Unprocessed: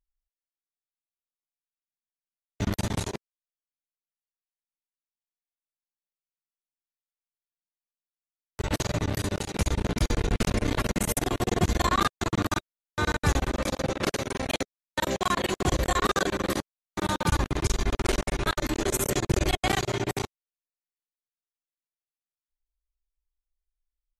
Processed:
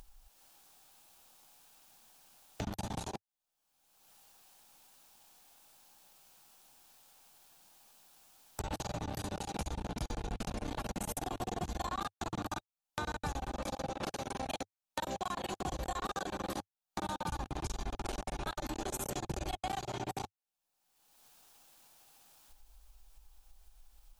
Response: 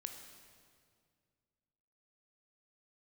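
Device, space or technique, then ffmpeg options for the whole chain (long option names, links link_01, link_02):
upward and downward compression: -af "equalizer=frequency=100:width_type=o:width=0.33:gain=-5,equalizer=frequency=400:width_type=o:width=0.33:gain=-4,equalizer=frequency=800:width_type=o:width=0.33:gain=10,equalizer=frequency=2000:width_type=o:width=0.33:gain=-7,acompressor=mode=upward:threshold=-35dB:ratio=2.5,acompressor=threshold=-37dB:ratio=4"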